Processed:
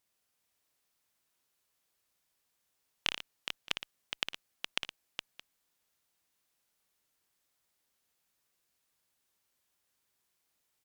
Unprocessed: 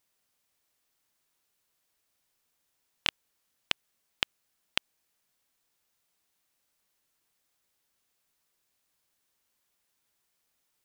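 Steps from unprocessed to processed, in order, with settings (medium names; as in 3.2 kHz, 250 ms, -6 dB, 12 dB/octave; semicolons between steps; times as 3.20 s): valve stage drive 8 dB, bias 0.65; multi-tap echo 57/116/416/620 ms -7.5/-12.5/-6.5/-19.5 dB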